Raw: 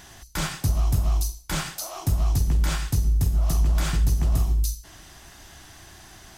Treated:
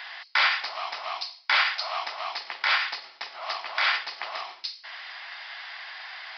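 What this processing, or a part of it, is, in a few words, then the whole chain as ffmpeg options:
musical greeting card: -af "aresample=11025,aresample=44100,highpass=f=790:w=0.5412,highpass=f=790:w=1.3066,equalizer=f=2.1k:t=o:w=0.5:g=8,volume=8.5dB"

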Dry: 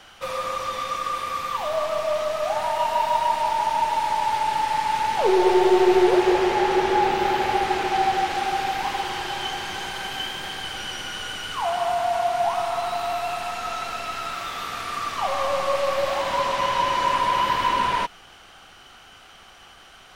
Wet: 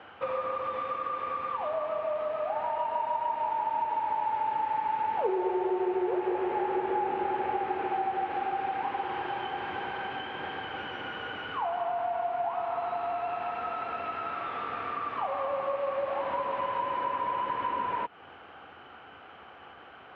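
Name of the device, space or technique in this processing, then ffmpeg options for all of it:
bass amplifier: -af "acompressor=threshold=-31dB:ratio=4,highpass=f=78:w=0.5412,highpass=f=78:w=1.3066,equalizer=f=110:t=q:w=4:g=-3,equalizer=f=170:t=q:w=4:g=-4,equalizer=f=290:t=q:w=4:g=4,equalizer=f=470:t=q:w=4:g=6,equalizer=f=860:t=q:w=4:g=3,equalizer=f=2k:t=q:w=4:g=-4,lowpass=f=2.4k:w=0.5412,lowpass=f=2.4k:w=1.3066"

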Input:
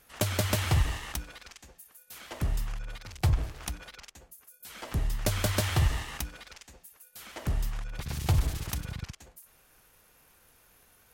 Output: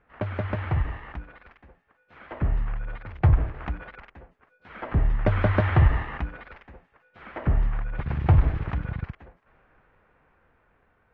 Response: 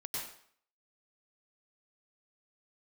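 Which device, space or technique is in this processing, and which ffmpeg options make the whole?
action camera in a waterproof case: -af "lowpass=f=2k:w=0.5412,lowpass=f=2k:w=1.3066,dynaudnorm=f=930:g=5:m=7.5dB" -ar 32000 -c:a aac -b:a 48k

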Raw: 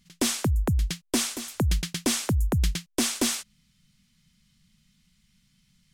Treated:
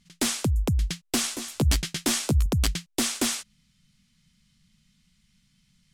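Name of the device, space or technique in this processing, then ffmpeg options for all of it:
overflowing digital effects unit: -filter_complex "[0:a]aeval=exprs='(mod(7.08*val(0)+1,2)-1)/7.08':c=same,lowpass=12k,asettb=1/sr,asplit=3[a][b][c];[a]atrim=end=1.224[d];[b]atrim=start=1.22:end=2.46,asetpts=PTS-STARTPTS,afade=t=in:d=0.004:c=qsin,afade=t=out:st=1.236:d=0.004:c=qsin,asplit=2[e][f];[f]adelay=14,volume=-4.5dB[g];[e][g]amix=inputs=2:normalize=0,atrim=end_sample=54684[h];[c]atrim=start=2.456[i];[d][h]acrossfade=d=0.004:c1=hsin:c2=qsin[j];[j][i]acrossfade=d=0.004:c1=qsin:c2=hsin"

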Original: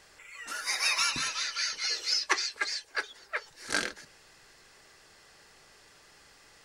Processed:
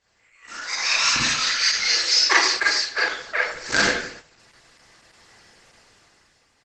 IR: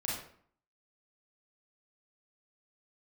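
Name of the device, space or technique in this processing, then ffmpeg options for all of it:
speakerphone in a meeting room: -filter_complex "[0:a]lowpass=f=11k:w=0.5412,lowpass=f=11k:w=1.3066,asplit=3[a][b][c];[a]afade=t=out:st=2.05:d=0.02[d];[b]bandreject=f=60:t=h:w=6,bandreject=f=120:t=h:w=6,bandreject=f=180:t=h:w=6,afade=t=in:st=2.05:d=0.02,afade=t=out:st=2.63:d=0.02[e];[c]afade=t=in:st=2.63:d=0.02[f];[d][e][f]amix=inputs=3:normalize=0[g];[1:a]atrim=start_sample=2205[h];[g][h]afir=irnorm=-1:irlink=0,asplit=2[i][j];[j]adelay=170,highpass=300,lowpass=3.4k,asoftclip=type=hard:threshold=-20dB,volume=-21dB[k];[i][k]amix=inputs=2:normalize=0,dynaudnorm=f=220:g=9:m=12.5dB,agate=range=-10dB:threshold=-39dB:ratio=16:detection=peak" -ar 48000 -c:a libopus -b:a 12k

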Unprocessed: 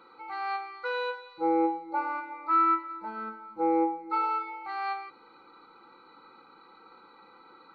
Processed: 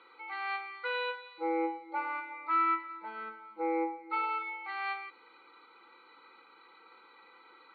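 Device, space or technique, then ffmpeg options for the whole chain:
phone earpiece: -af "highpass=470,equalizer=f=570:t=q:w=4:g=-4,equalizer=f=810:t=q:w=4:g=-6,equalizer=f=1.3k:t=q:w=4:g=-5,equalizer=f=2.1k:t=q:w=4:g=6,equalizer=f=3.2k:t=q:w=4:g=8,lowpass=f=3.9k:w=0.5412,lowpass=f=3.9k:w=1.3066"

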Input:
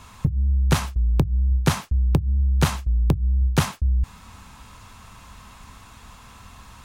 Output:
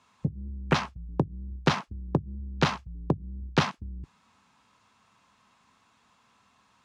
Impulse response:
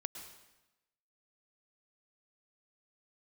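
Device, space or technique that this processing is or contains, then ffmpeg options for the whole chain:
over-cleaned archive recording: -af "highpass=190,lowpass=6.9k,afwtdn=0.0178"

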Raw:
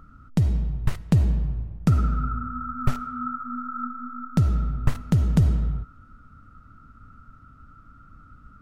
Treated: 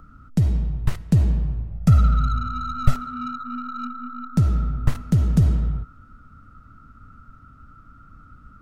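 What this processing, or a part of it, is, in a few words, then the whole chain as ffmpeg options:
one-band saturation: -filter_complex "[0:a]asettb=1/sr,asplit=3[a][b][c];[a]atrim=end=1.724[d];[b]atrim=start=1.72:end=2.95,asetpts=PTS-STARTPTS,afade=t=in:d=0.004:c=qsin,afade=t=out:st=1.226:d=0.004:c=qsin,aecho=1:1:1.5:0.74,atrim=end_sample=54243[e];[c]atrim=start=2.946[f];[d][e]acrossfade=d=0.004:c1=hsin:c2=qsin[g];[g][f]acrossfade=d=0.004:c1=qsin:c2=hsin,acrossover=split=290|4000[h][i][j];[i]asoftclip=type=tanh:threshold=-28dB[k];[h][k][j]amix=inputs=3:normalize=0,volume=2dB"

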